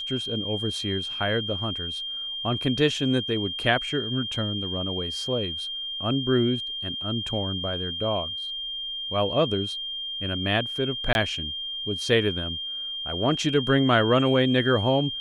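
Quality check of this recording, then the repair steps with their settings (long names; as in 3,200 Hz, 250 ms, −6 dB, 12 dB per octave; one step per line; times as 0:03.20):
whistle 3,200 Hz −30 dBFS
0:11.13–0:11.15: drop-out 21 ms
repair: notch filter 3,200 Hz, Q 30
repair the gap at 0:11.13, 21 ms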